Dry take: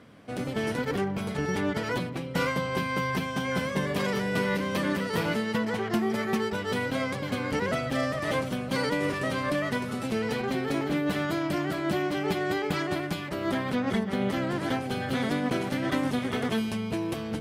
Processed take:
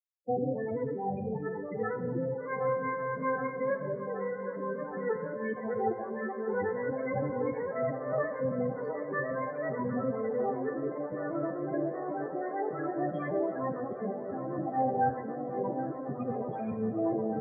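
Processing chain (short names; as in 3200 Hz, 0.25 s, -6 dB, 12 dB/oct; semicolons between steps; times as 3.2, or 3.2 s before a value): de-hum 332.3 Hz, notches 40; negative-ratio compressor -32 dBFS, ratio -0.5; bit-crush 6-bit; loudest bins only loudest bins 8; speaker cabinet 120–2200 Hz, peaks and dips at 180 Hz -7 dB, 490 Hz +5 dB, 770 Hz +10 dB; on a send: band-limited delay 0.769 s, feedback 84%, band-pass 810 Hz, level -11 dB; on the sum: non-linear reverb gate 0.36 s falling, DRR 8.5 dB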